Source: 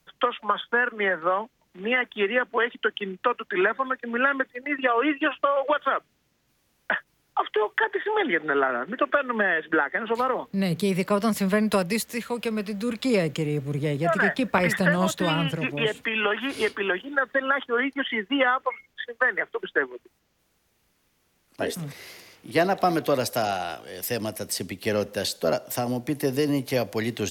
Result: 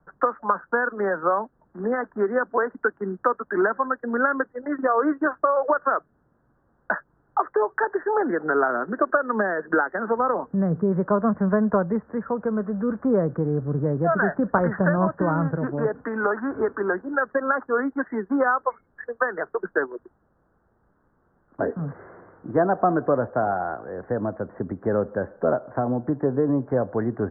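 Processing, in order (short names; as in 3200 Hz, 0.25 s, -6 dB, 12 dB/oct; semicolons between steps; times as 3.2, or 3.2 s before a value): steep low-pass 1600 Hz 72 dB/oct; in parallel at +1 dB: compressor, threshold -33 dBFS, peak gain reduction 15.5 dB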